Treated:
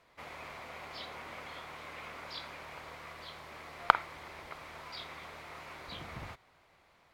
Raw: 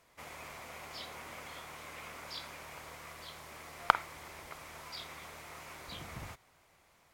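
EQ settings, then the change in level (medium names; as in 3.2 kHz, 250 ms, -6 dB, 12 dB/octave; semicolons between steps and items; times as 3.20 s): tone controls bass -2 dB, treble -12 dB; peaking EQ 4.2 kHz +5.5 dB 0.67 oct; +2.0 dB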